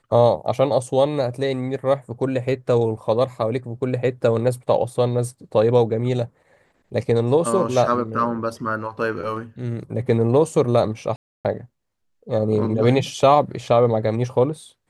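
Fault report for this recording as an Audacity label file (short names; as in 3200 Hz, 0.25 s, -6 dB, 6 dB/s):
11.160000	11.450000	gap 0.287 s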